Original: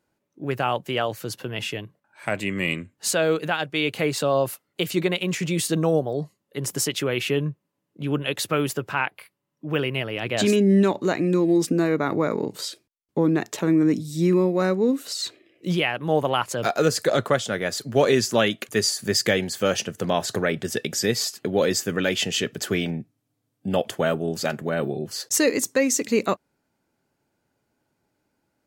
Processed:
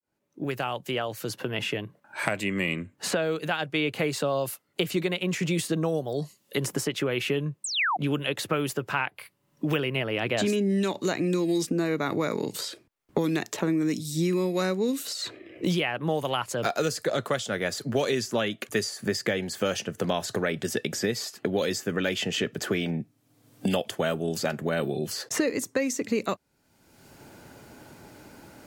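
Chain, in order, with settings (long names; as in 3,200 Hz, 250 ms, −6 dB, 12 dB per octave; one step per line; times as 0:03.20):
fade in at the beginning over 4.28 s
sound drawn into the spectrogram fall, 0:07.64–0:07.97, 680–8,800 Hz −27 dBFS
multiband upward and downward compressor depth 100%
level −5 dB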